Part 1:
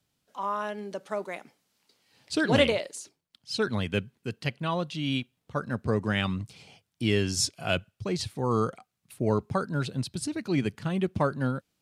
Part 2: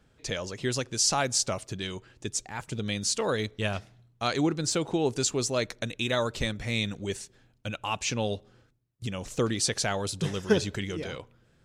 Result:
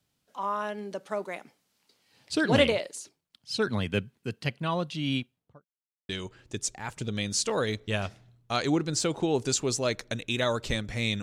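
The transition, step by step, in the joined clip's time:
part 1
5.14–5.66 s: studio fade out
5.66–6.09 s: mute
6.09 s: go over to part 2 from 1.80 s

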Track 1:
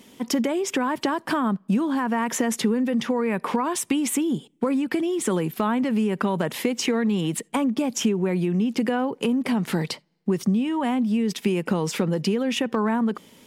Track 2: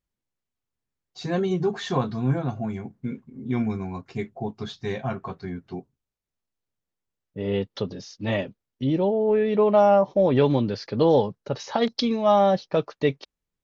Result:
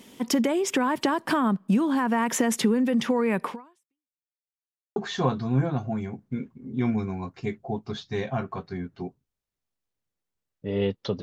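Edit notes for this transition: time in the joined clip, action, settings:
track 1
3.44–4.23 s: fade out exponential
4.23–4.96 s: mute
4.96 s: go over to track 2 from 1.68 s

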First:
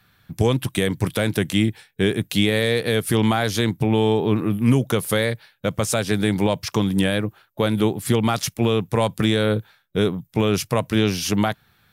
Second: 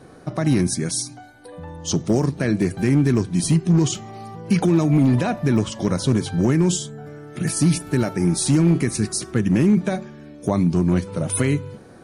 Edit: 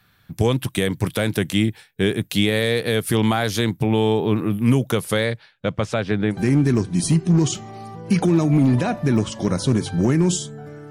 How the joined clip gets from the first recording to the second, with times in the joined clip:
first
4.99–6.37 s: low-pass 11 kHz -> 1.8 kHz
6.33 s: go over to second from 2.73 s, crossfade 0.08 s

